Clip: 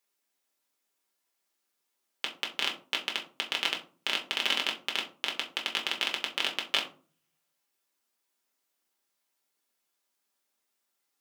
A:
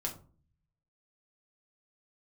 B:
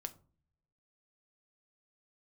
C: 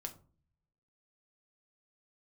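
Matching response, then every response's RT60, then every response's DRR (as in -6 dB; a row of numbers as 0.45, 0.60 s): A; 0.40 s, not exponential, 0.45 s; -0.5, 8.5, 4.0 dB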